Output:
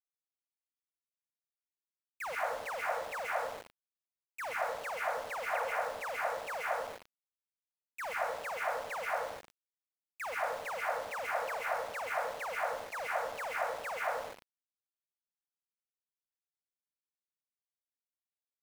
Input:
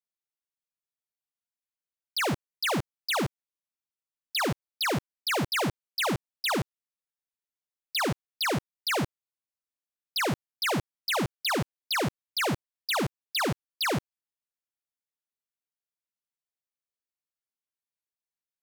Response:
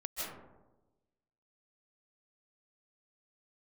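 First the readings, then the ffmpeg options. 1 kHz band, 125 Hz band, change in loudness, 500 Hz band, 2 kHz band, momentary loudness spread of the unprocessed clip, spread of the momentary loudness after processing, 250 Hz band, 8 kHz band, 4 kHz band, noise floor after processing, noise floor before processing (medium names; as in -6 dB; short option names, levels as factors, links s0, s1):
-2.0 dB, under -25 dB, -7.0 dB, -3.5 dB, -5.0 dB, 3 LU, 8 LU, -28.5 dB, -13.0 dB, -18.5 dB, under -85 dBFS, under -85 dBFS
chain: -filter_complex "[0:a]highpass=f=170:t=q:w=0.5412,highpass=f=170:t=q:w=1.307,lowpass=f=2100:t=q:w=0.5176,lowpass=f=2100:t=q:w=0.7071,lowpass=f=2100:t=q:w=1.932,afreqshift=320[s0];[1:a]atrim=start_sample=2205,asetrate=48510,aresample=44100[s1];[s0][s1]afir=irnorm=-1:irlink=0,aeval=exprs='val(0)*gte(abs(val(0)),0.0141)':c=same,volume=0.501"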